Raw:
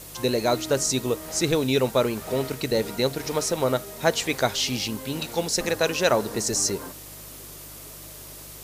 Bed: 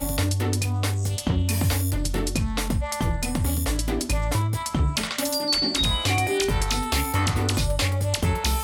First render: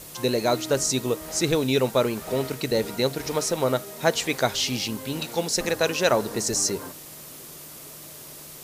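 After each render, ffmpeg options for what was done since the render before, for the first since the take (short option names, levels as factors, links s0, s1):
-af "bandreject=f=50:t=h:w=4,bandreject=f=100:t=h:w=4"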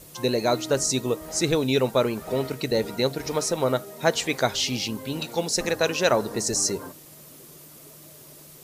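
-af "afftdn=nr=7:nf=-42"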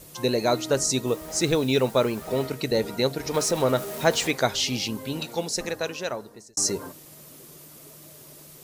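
-filter_complex "[0:a]asettb=1/sr,asplit=3[s0][s1][s2];[s0]atrim=end=1.074[s3];[s1]atrim=start=1.07:end=2.45,asetpts=PTS-STARTPTS,afade=t=in:d=0.004:c=qsin,afade=t=out:st=1.376:d=0.004:c=qsin,acrusher=bits=6:mix=0:aa=0.5[s4];[s2]atrim=start=2.446[s5];[s3][s4]acrossfade=d=0.004:c1=hsin:c2=qsin[s6];[s6][s5]acrossfade=d=0.004:c1=qsin:c2=hsin,asettb=1/sr,asplit=3[s7][s8][s9];[s7]atrim=end=3.344[s10];[s8]atrim=start=3.34:end=4.31,asetpts=PTS-STARTPTS,afade=t=in:d=0.004:c=qsin,afade=t=out:st=0.966:d=0.004:c=qsin,aeval=exprs='val(0)+0.5*0.0251*sgn(val(0))':c=same[s11];[s9]atrim=start=4.306[s12];[s10][s11]acrossfade=d=0.004:c1=hsin:c2=qsin[s13];[s13][s12]acrossfade=d=0.004:c1=qsin:c2=hsin,asplit=2[s14][s15];[s14]atrim=end=6.57,asetpts=PTS-STARTPTS,afade=t=out:st=5.06:d=1.51[s16];[s15]atrim=start=6.57,asetpts=PTS-STARTPTS,afade=t=in:d=0.004:c=hsin[s17];[s16][s17]concat=n=2:v=0:a=1"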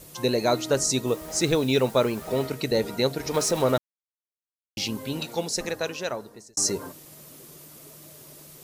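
-filter_complex "[0:a]asplit=3[s0][s1][s2];[s0]atrim=end=3.78,asetpts=PTS-STARTPTS,afade=t=out:st=3.776:d=0.004:c=hsin[s3];[s1]atrim=start=3.78:end=4.77,asetpts=PTS-STARTPTS,volume=0[s4];[s2]atrim=start=4.77,asetpts=PTS-STARTPTS,afade=t=in:d=0.004:c=hsin[s5];[s3][s4][s5]concat=n=3:v=0:a=1"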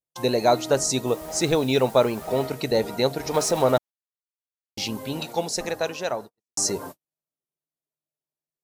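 -af "agate=range=0.00282:threshold=0.0126:ratio=16:detection=peak,equalizer=f=760:t=o:w=0.76:g=7"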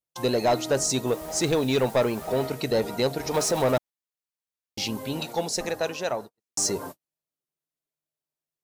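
-af "asoftclip=type=tanh:threshold=0.168"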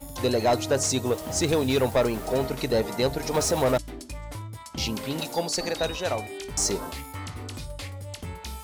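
-filter_complex "[1:a]volume=0.211[s0];[0:a][s0]amix=inputs=2:normalize=0"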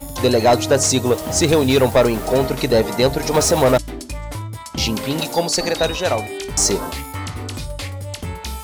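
-af "volume=2.66"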